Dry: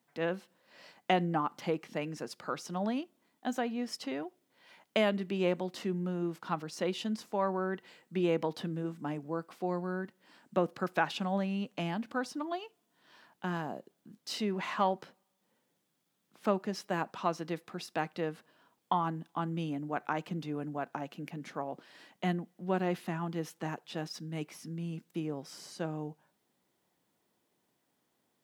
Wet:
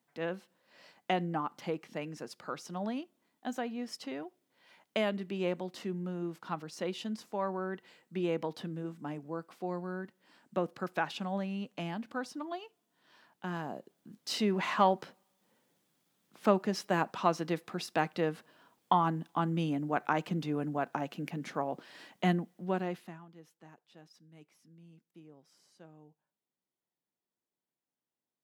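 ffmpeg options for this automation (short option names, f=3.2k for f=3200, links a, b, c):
-af "volume=3.5dB,afade=t=in:st=13.46:d=1:silence=0.473151,afade=t=out:st=22.37:d=0.61:silence=0.298538,afade=t=out:st=22.98:d=0.27:silence=0.266073"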